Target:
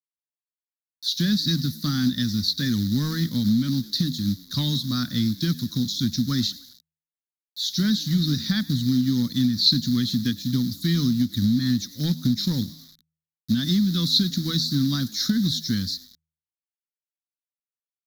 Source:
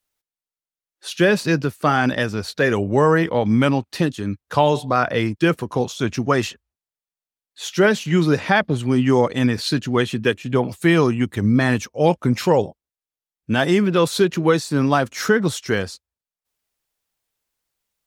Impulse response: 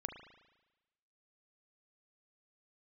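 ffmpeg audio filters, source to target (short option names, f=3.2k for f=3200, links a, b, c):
-filter_complex "[0:a]asplit=5[a][b][c][d][e];[b]adelay=102,afreqshift=78,volume=-23.5dB[f];[c]adelay=204,afreqshift=156,volume=-27.8dB[g];[d]adelay=306,afreqshift=234,volume=-32.1dB[h];[e]adelay=408,afreqshift=312,volume=-36.4dB[i];[a][f][g][h][i]amix=inputs=5:normalize=0,acrossover=split=350|1700[j][k][l];[j]acrusher=bits=3:mode=log:mix=0:aa=0.000001[m];[k]aeval=exprs='0.531*(cos(1*acos(clip(val(0)/0.531,-1,1)))-cos(1*PI/2))+0.0841*(cos(3*acos(clip(val(0)/0.531,-1,1)))-cos(3*PI/2))':c=same[n];[m][n][l]amix=inputs=3:normalize=0,acrossover=split=4500[o][p];[p]acompressor=threshold=-39dB:ratio=4:attack=1:release=60[q];[o][q]amix=inputs=2:normalize=0,acrusher=bits=7:mix=0:aa=0.000001,firequalizer=gain_entry='entry(150,0);entry(240,6);entry(400,-24);entry(770,-29);entry(1200,-16);entry(1800,-13);entry(2700,-26);entry(3800,7);entry(8600,-22);entry(12000,3)':delay=0.05:min_phase=1,acompressor=threshold=-18dB:ratio=6,equalizer=f=6.8k:w=0.64:g=12.5,bandreject=f=79.32:t=h:w=4,bandreject=f=158.64:t=h:w=4"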